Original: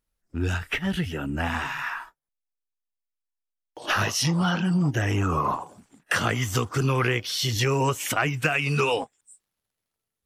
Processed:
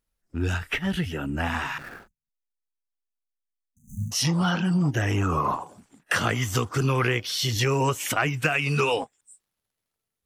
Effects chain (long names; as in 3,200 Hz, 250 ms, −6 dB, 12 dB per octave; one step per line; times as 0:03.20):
0:01.78–0:04.12: running median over 41 samples
0:02.07–0:04.11: time-frequency box erased 250–6,000 Hz